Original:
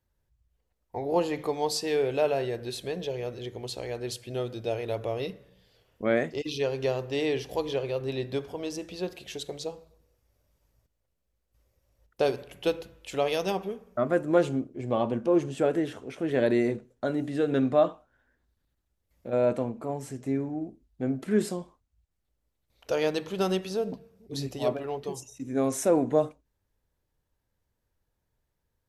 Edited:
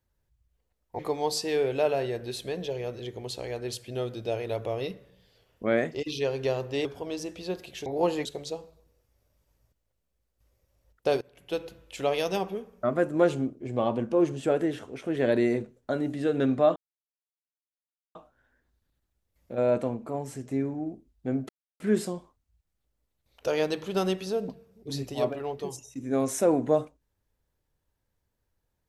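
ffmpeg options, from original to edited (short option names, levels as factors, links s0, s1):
-filter_complex "[0:a]asplit=8[s0][s1][s2][s3][s4][s5][s6][s7];[s0]atrim=end=0.992[s8];[s1]atrim=start=1.378:end=7.242[s9];[s2]atrim=start=8.378:end=9.392[s10];[s3]atrim=start=0.988:end=1.382[s11];[s4]atrim=start=9.388:end=12.35,asetpts=PTS-STARTPTS,afade=t=out:st=2.958:d=0.004:c=hsin:silence=0.105925[s12];[s5]atrim=start=12.35:end=17.9,asetpts=PTS-STARTPTS,afade=t=in:d=0.6:silence=0.105925,afade=t=out:st=5.546:d=0.004:c=hsin,apad=pad_dur=1.39[s13];[s6]atrim=start=17.9:end=21.24,asetpts=PTS-STARTPTS,afade=t=in:d=0.004:c=hsin,afade=t=out:st=3.336:d=0.004:c=hsin,apad=pad_dur=0.31[s14];[s7]atrim=start=21.24,asetpts=PTS-STARTPTS,afade=t=in:d=0.004:c=hsin[s15];[s8][s9]acrossfade=d=0.004:c1=hsin:c2=hsin[s16];[s16][s10]acrossfade=d=0.004:c1=hsin:c2=hsin[s17];[s17][s11]acrossfade=d=0.004:c1=hsin:c2=hsin[s18];[s12][s13][s14][s15]concat=n=4:v=0:a=1[s19];[s18][s19]acrossfade=d=0.004:c1=hsin:c2=hsin"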